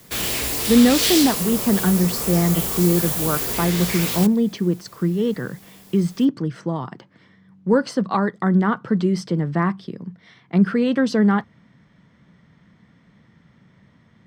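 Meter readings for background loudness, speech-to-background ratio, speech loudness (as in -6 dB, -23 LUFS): -22.0 LUFS, 1.5 dB, -20.5 LUFS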